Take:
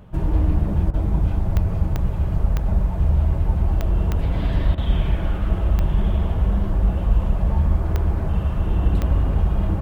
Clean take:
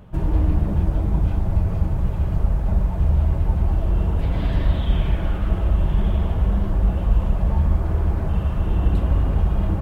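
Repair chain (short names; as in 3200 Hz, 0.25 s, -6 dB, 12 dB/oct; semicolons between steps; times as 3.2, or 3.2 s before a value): de-click; interpolate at 0.91/4.75, 26 ms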